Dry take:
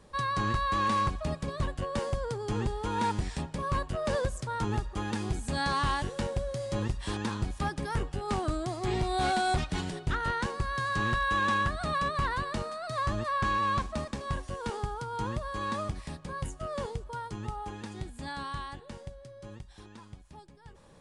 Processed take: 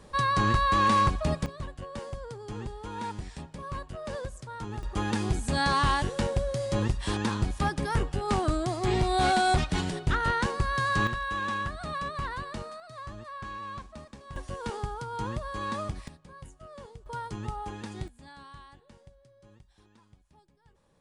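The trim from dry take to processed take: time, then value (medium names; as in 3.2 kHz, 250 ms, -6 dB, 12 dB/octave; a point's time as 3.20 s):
+5 dB
from 1.46 s -6.5 dB
from 4.83 s +4 dB
from 11.07 s -4 dB
from 12.80 s -11 dB
from 14.36 s 0 dB
from 16.08 s -11 dB
from 17.06 s +1.5 dB
from 18.08 s -11 dB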